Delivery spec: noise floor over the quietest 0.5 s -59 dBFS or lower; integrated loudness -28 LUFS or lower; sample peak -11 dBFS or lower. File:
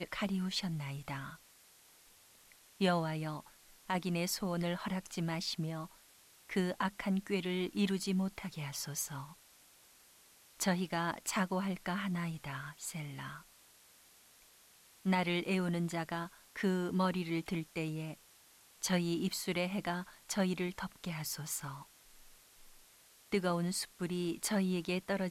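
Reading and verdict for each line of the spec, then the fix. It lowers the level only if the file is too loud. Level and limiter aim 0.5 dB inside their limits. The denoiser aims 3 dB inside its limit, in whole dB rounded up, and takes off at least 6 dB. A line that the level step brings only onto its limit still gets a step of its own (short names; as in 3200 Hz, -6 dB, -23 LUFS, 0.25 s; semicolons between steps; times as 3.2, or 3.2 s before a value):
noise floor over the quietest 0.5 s -63 dBFS: OK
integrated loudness -36.5 LUFS: OK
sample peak -20.0 dBFS: OK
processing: none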